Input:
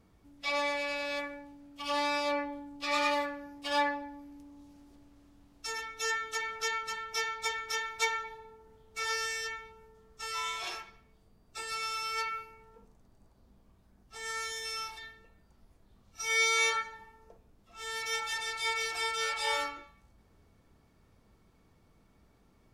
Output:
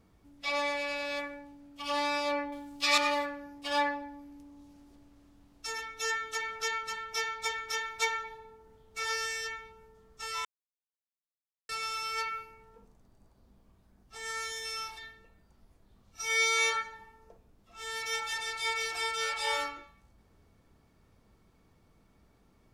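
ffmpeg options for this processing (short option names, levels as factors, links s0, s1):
-filter_complex "[0:a]asettb=1/sr,asplit=3[s0][s1][s2];[s0]atrim=end=2.524[s3];[s1]atrim=start=2.52:end=2.98,asetpts=PTS-STARTPTS,afade=t=in:d=0.004:c=qsin,afade=t=out:st=0.456:d=0.004:c=qsin,highshelf=f=2000:g=12[s4];[s2]atrim=start=2.976[s5];[s3][s4]acrossfade=d=0.004:c1=hsin:c2=qsin[s6];[s6][s5]acrossfade=d=0.004:c1=qsin:c2=hsin,asplit=3[s7][s8][s9];[s7]atrim=end=10.45,asetpts=PTS-STARTPTS,afade=t=out:st=10.446:d=0.004:c=hsin[s10];[s8]atrim=start=10.45:end=11.69,asetpts=PTS-STARTPTS,volume=0[s11];[s9]atrim=start=11.69,asetpts=PTS-STARTPTS,afade=t=in:d=0.004:c=hsin[s12];[s10][s11][s12]concat=n=3:v=0:a=1"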